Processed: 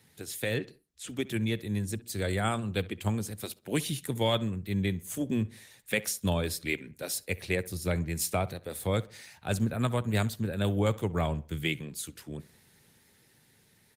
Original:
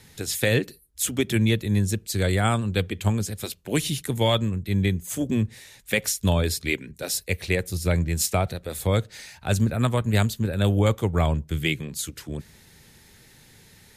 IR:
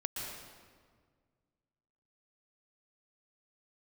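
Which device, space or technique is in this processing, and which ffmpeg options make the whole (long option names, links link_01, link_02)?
video call: -filter_complex "[0:a]asplit=3[link_01][link_02][link_03];[link_01]afade=type=out:start_time=0.58:duration=0.02[link_04];[link_02]lowpass=5900,afade=type=in:start_time=0.58:duration=0.02,afade=type=out:start_time=1.08:duration=0.02[link_05];[link_03]afade=type=in:start_time=1.08:duration=0.02[link_06];[link_04][link_05][link_06]amix=inputs=3:normalize=0,asplit=3[link_07][link_08][link_09];[link_07]afade=type=out:start_time=1.7:duration=0.02[link_10];[link_08]bandreject=frequency=60:width_type=h:width=6,bandreject=frequency=120:width_type=h:width=6,bandreject=frequency=180:width_type=h:width=6,bandreject=frequency=240:width_type=h:width=6,bandreject=frequency=300:width_type=h:width=6,afade=type=in:start_time=1.7:duration=0.02,afade=type=out:start_time=2.71:duration=0.02[link_11];[link_09]afade=type=in:start_time=2.71:duration=0.02[link_12];[link_10][link_11][link_12]amix=inputs=3:normalize=0,asplit=3[link_13][link_14][link_15];[link_13]afade=type=out:start_time=6.25:duration=0.02[link_16];[link_14]adynamicequalizer=threshold=0.0224:dfrequency=300:dqfactor=1:tfrequency=300:tqfactor=1:attack=5:release=100:ratio=0.375:range=2:mode=cutabove:tftype=bell,afade=type=in:start_time=6.25:duration=0.02,afade=type=out:start_time=6.8:duration=0.02[link_17];[link_15]afade=type=in:start_time=6.8:duration=0.02[link_18];[link_16][link_17][link_18]amix=inputs=3:normalize=0,highpass=100,asplit=2[link_19][link_20];[link_20]adelay=66,lowpass=frequency=3100:poles=1,volume=-19dB,asplit=2[link_21][link_22];[link_22]adelay=66,lowpass=frequency=3100:poles=1,volume=0.4,asplit=2[link_23][link_24];[link_24]adelay=66,lowpass=frequency=3100:poles=1,volume=0.4[link_25];[link_19][link_21][link_23][link_25]amix=inputs=4:normalize=0,dynaudnorm=framelen=350:gausssize=11:maxgain=4.5dB,volume=-9dB" -ar 48000 -c:a libopus -b:a 32k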